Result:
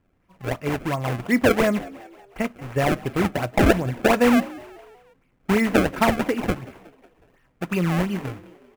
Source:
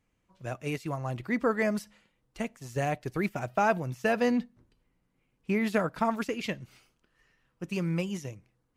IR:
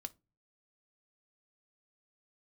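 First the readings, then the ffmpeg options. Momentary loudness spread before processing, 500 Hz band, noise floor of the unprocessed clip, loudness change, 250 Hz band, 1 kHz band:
13 LU, +8.0 dB, -76 dBFS, +8.5 dB, +9.0 dB, +6.5 dB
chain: -filter_complex "[0:a]acrusher=samples=27:mix=1:aa=0.000001:lfo=1:lforange=43.2:lforate=2.8,highshelf=f=3.1k:t=q:w=1.5:g=-6,asplit=5[a][b][c][d][e];[b]adelay=183,afreqshift=63,volume=-20.5dB[f];[c]adelay=366,afreqshift=126,volume=-26.2dB[g];[d]adelay=549,afreqshift=189,volume=-31.9dB[h];[e]adelay=732,afreqshift=252,volume=-37.5dB[i];[a][f][g][h][i]amix=inputs=5:normalize=0,asplit=2[j][k];[1:a]atrim=start_sample=2205[l];[k][l]afir=irnorm=-1:irlink=0,volume=1dB[m];[j][m]amix=inputs=2:normalize=0,volume=4dB"

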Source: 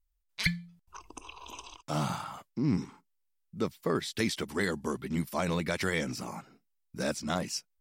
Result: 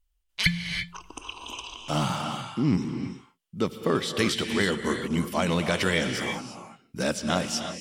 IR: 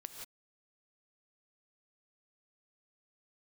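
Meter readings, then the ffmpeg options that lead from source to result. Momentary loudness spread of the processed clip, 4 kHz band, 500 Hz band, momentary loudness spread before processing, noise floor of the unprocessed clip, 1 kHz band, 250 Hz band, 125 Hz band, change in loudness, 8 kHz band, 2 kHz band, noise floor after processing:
14 LU, +9.0 dB, +5.5 dB, 17 LU, -77 dBFS, +5.5 dB, +5.5 dB, +5.0 dB, +5.5 dB, +5.5 dB, +6.5 dB, -73 dBFS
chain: -filter_complex "[0:a]asplit=2[a][b];[b]equalizer=f=3k:w=4.1:g=12.5[c];[1:a]atrim=start_sample=2205,asetrate=22932,aresample=44100[d];[c][d]afir=irnorm=-1:irlink=0,volume=2.5dB[e];[a][e]amix=inputs=2:normalize=0,volume=-1.5dB"

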